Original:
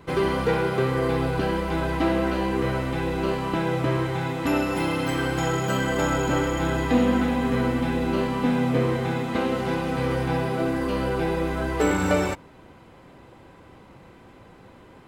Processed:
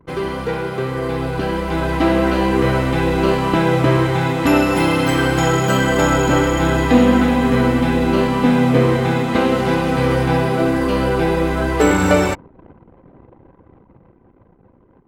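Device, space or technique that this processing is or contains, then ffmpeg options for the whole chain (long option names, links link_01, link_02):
voice memo with heavy noise removal: -af "anlmdn=0.0398,dynaudnorm=framelen=210:gausssize=17:maxgain=11.5dB"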